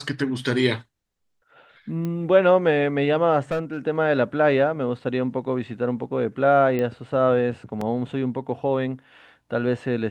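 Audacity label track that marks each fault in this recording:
2.050000	2.050000	pop -18 dBFS
3.510000	3.780000	clipped -20.5 dBFS
6.790000	6.790000	pop -15 dBFS
7.810000	7.810000	gap 3.8 ms

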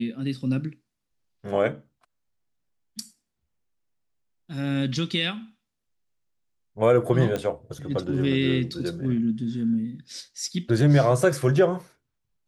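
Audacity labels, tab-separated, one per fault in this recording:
7.360000	7.360000	pop -15 dBFS

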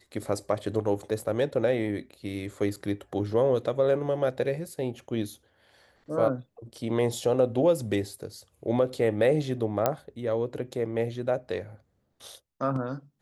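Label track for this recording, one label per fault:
2.760000	2.770000	gap 5.9 ms
9.860000	9.860000	pop -10 dBFS

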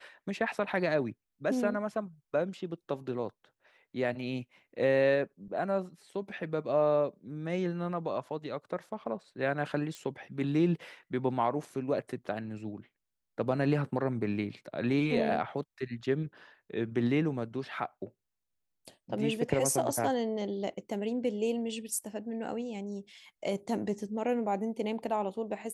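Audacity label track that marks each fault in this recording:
9.950000	9.950000	pop -27 dBFS

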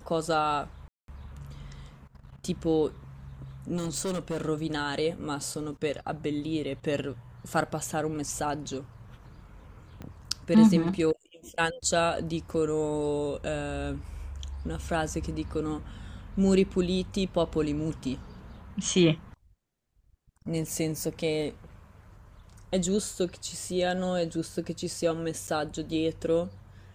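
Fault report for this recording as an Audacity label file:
0.880000	1.080000	gap 0.202 s
3.760000	4.450000	clipped -27.5 dBFS
10.020000	10.020000	pop -27 dBFS
25.470000	25.480000	gap 7.7 ms

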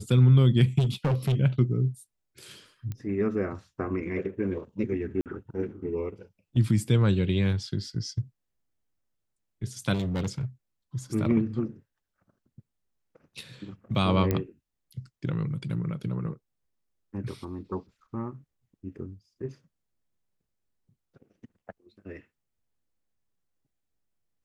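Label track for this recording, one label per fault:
0.780000	1.350000	clipped -21 dBFS
2.920000	2.920000	pop -23 dBFS
5.210000	5.260000	gap 48 ms
9.930000	10.450000	clipped -25.5 dBFS
14.310000	14.310000	pop -13 dBFS

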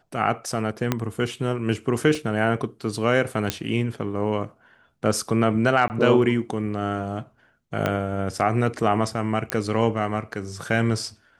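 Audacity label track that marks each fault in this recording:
0.920000	0.920000	pop -7 dBFS
2.150000	2.150000	gap 2.2 ms
3.500000	3.500000	pop -6 dBFS
5.880000	5.900000	gap 19 ms
7.860000	7.860000	pop -10 dBFS
9.500000	9.500000	pop -8 dBFS

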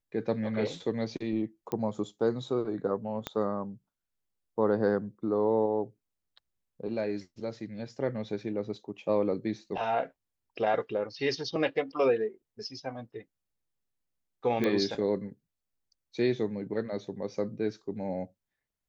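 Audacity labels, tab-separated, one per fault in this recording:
1.720000	1.720000	pop -20 dBFS
3.270000	3.270000	pop -17 dBFS
14.640000	14.640000	pop -17 dBFS

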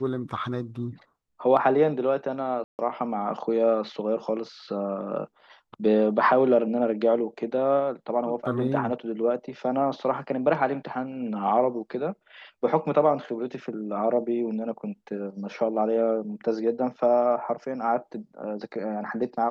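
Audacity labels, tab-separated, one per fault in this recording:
2.640000	2.790000	gap 0.149 s

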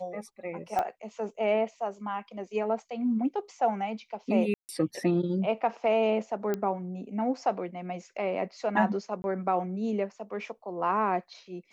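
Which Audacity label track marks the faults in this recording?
0.790000	0.790000	pop -16 dBFS
4.540000	4.690000	gap 0.149 s
6.540000	6.540000	pop -17 dBFS
9.220000	9.240000	gap 21 ms

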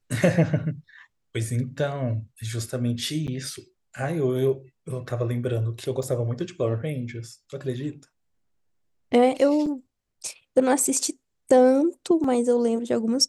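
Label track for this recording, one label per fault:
3.270000	3.280000	gap 8.6 ms
6.030000	6.030000	gap 3.3 ms
9.660000	9.660000	gap 4.9 ms
12.240000	12.240000	gap 3.2 ms

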